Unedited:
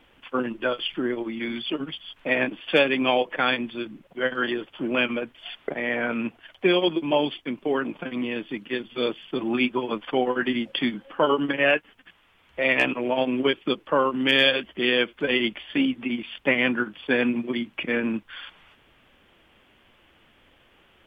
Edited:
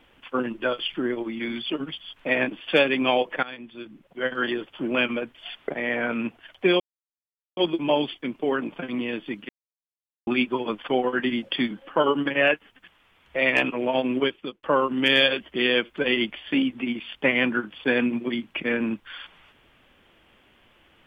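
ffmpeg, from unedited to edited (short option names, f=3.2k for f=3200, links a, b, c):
-filter_complex "[0:a]asplit=6[a][b][c][d][e][f];[a]atrim=end=3.43,asetpts=PTS-STARTPTS,afade=t=out:st=3.426:d=0.004:c=hsin:silence=0.105925[g];[b]atrim=start=3.43:end=6.8,asetpts=PTS-STARTPTS,afade=t=in:d=1.02:silence=0.105925,afade=t=out:st=3.366:d=0.004:c=hsin,apad=pad_dur=0.77[h];[c]atrim=start=6.8:end=8.72,asetpts=PTS-STARTPTS,afade=t=in:d=0.004:c=hsin,afade=t=out:st=1.916:d=0.004:c=hsin[i];[d]atrim=start=8.72:end=9.5,asetpts=PTS-STARTPTS,volume=0[j];[e]atrim=start=9.5:end=13.86,asetpts=PTS-STARTPTS,afade=t=in:d=0.004:c=hsin,afade=t=out:st=3.91:d=0.45[k];[f]atrim=start=13.86,asetpts=PTS-STARTPTS,afade=t=in:d=0.004:c=hsin[l];[g][h][i][j][k][l]concat=n=6:v=0:a=1"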